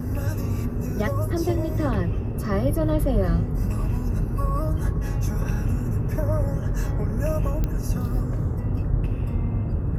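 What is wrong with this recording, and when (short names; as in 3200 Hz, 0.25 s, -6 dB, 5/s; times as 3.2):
7.64 pop -13 dBFS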